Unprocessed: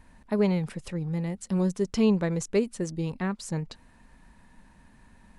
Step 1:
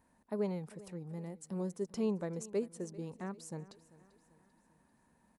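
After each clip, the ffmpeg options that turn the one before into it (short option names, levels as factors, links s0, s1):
-af "highpass=f=450:p=1,equalizer=f=2800:t=o:w=2.6:g=-13,aecho=1:1:392|784|1176|1568:0.106|0.0519|0.0254|0.0125,volume=0.596"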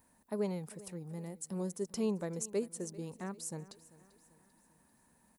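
-af "aemphasis=mode=production:type=50kf"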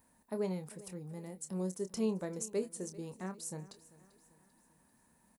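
-filter_complex "[0:a]asplit=2[s0][s1];[s1]adelay=27,volume=0.316[s2];[s0][s2]amix=inputs=2:normalize=0,volume=0.891"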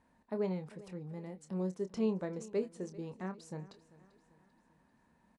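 -af "lowpass=3500,volume=1.12"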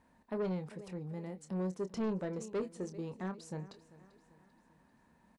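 -af "asoftclip=type=tanh:threshold=0.0237,volume=1.33"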